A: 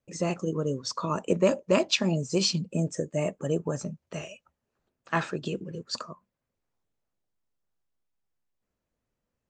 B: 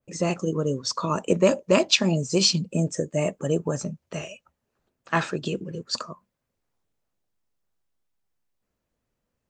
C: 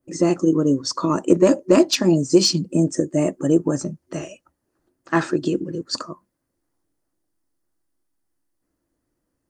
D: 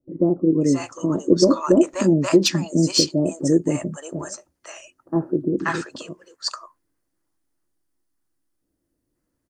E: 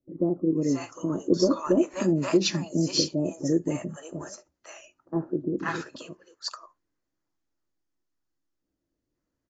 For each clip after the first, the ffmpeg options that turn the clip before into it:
-af "adynamicequalizer=threshold=0.0112:dfrequency=2700:dqfactor=0.7:tfrequency=2700:tqfactor=0.7:attack=5:release=100:ratio=0.375:range=1.5:mode=boostabove:tftype=highshelf,volume=1.5"
-af "acontrast=33,superequalizer=6b=3.55:12b=0.501:13b=0.562:16b=2,volume=0.708"
-filter_complex "[0:a]acrossover=split=730[s0][s1];[s1]adelay=530[s2];[s0][s2]amix=inputs=2:normalize=0"
-af "volume=0.473" -ar 16000 -c:a aac -b:a 24k

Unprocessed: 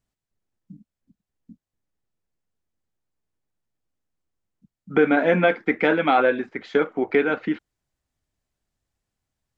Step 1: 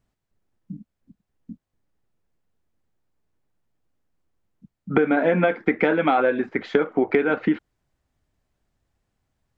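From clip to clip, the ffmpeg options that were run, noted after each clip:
-af "highshelf=f=3100:g=-9.5,acompressor=threshold=0.0631:ratio=6,volume=2.51"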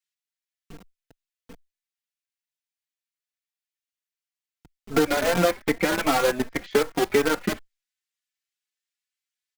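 -filter_complex "[0:a]acrossover=split=1900[s0][s1];[s0]acrusher=bits=4:dc=4:mix=0:aa=0.000001[s2];[s2][s1]amix=inputs=2:normalize=0,asplit=2[s3][s4];[s4]adelay=3.9,afreqshift=2.6[s5];[s3][s5]amix=inputs=2:normalize=1"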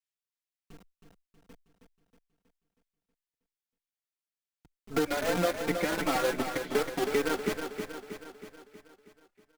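-af "aecho=1:1:319|638|957|1276|1595|1914|2233:0.447|0.246|0.135|0.0743|0.0409|0.0225|0.0124,volume=0.422"

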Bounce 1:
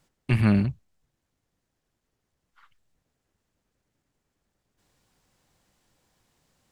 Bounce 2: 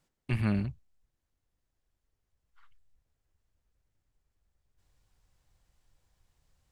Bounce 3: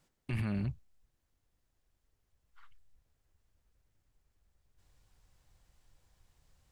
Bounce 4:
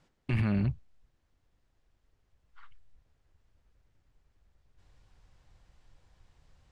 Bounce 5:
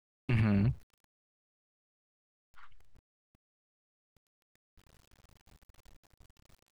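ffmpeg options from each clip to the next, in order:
-af "asubboost=boost=8:cutoff=79,volume=0.422"
-af "alimiter=level_in=2:limit=0.0631:level=0:latency=1:release=36,volume=0.501,volume=1.41"
-af "adynamicsmooth=sensitivity=5.5:basefreq=5700,volume=2"
-af "aeval=exprs='val(0)*gte(abs(val(0)),0.00158)':c=same"

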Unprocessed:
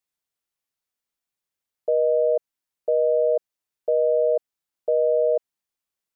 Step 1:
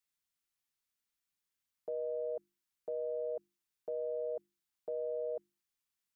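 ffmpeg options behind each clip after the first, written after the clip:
-af "alimiter=limit=0.0891:level=0:latency=1:release=23,equalizer=f=580:w=1.3:g=-10,bandreject=f=50:t=h:w=6,bandreject=f=100:t=h:w=6,bandreject=f=150:t=h:w=6,bandreject=f=200:t=h:w=6,bandreject=f=250:t=h:w=6,bandreject=f=300:t=h:w=6,bandreject=f=350:t=h:w=6,volume=0.841"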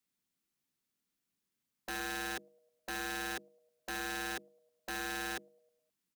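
-filter_complex "[0:a]acrossover=split=180|280|570[s0][s1][s2][s3];[s1]aeval=exprs='0.00282*sin(PI/2*5.01*val(0)/0.00282)':c=same[s4];[s3]aecho=1:1:104|208|312|416|520:0.0891|0.0526|0.031|0.0183|0.0108[s5];[s0][s4][s2][s5]amix=inputs=4:normalize=0,aeval=exprs='(mod(59.6*val(0)+1,2)-1)/59.6':c=same,volume=1.12"

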